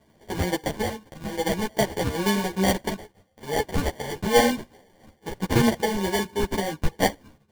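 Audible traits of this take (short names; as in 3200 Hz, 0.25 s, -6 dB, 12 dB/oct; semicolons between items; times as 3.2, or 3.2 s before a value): phasing stages 6, 2.3 Hz, lowest notch 640–1900 Hz; aliases and images of a low sample rate 1300 Hz, jitter 0%; a shimmering, thickened sound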